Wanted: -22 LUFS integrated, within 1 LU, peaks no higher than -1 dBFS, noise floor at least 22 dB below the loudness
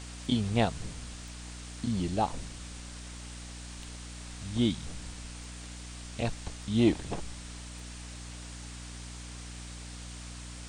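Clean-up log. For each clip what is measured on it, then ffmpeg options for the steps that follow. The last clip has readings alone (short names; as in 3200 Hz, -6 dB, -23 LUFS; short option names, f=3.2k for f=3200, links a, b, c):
hum 60 Hz; harmonics up to 300 Hz; hum level -42 dBFS; noise floor -44 dBFS; noise floor target -58 dBFS; loudness -35.5 LUFS; peak -12.0 dBFS; loudness target -22.0 LUFS
-> -af "bandreject=f=60:t=h:w=6,bandreject=f=120:t=h:w=6,bandreject=f=180:t=h:w=6,bandreject=f=240:t=h:w=6,bandreject=f=300:t=h:w=6"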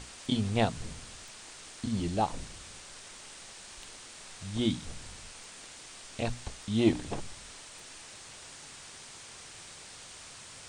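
hum none; noise floor -49 dBFS; noise floor target -59 dBFS
-> -af "afftdn=nr=10:nf=-49"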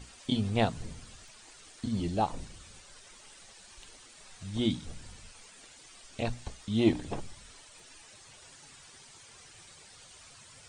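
noise floor -54 dBFS; noise floor target -55 dBFS
-> -af "afftdn=nr=6:nf=-54"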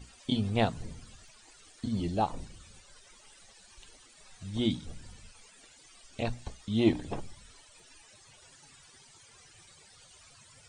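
noise floor -58 dBFS; loudness -32.0 LUFS; peak -12.0 dBFS; loudness target -22.0 LUFS
-> -af "volume=10dB"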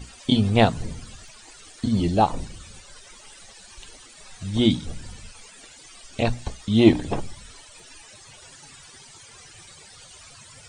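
loudness -22.0 LUFS; peak -2.0 dBFS; noise floor -48 dBFS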